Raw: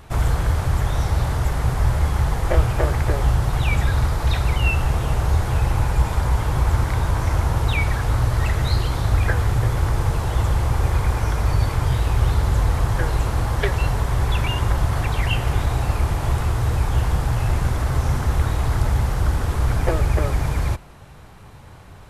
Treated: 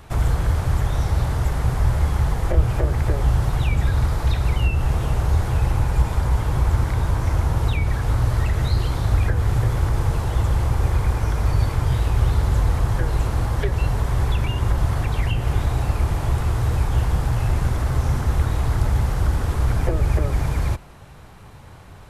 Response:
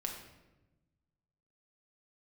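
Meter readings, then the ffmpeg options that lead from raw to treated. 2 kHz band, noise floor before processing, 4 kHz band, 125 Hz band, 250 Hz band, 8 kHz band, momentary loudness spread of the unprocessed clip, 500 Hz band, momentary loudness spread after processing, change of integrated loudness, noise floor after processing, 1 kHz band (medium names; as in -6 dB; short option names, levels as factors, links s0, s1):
-4.0 dB, -42 dBFS, -3.5 dB, 0.0 dB, 0.0 dB, -3.0 dB, 2 LU, -2.0 dB, 2 LU, -0.5 dB, -42 dBFS, -3.0 dB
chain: -filter_complex "[0:a]acrossover=split=480[s0][s1];[s1]acompressor=threshold=0.0282:ratio=6[s2];[s0][s2]amix=inputs=2:normalize=0"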